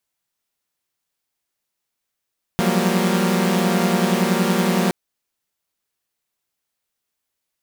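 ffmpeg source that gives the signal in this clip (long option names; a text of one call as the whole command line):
ffmpeg -f lavfi -i "aevalsrc='0.106*((2*mod(174.61*t,1)-1)+(2*mod(185*t,1)-1)+(2*mod(196*t,1)-1)+(2*mod(233.08*t,1)-1))':duration=2.32:sample_rate=44100" out.wav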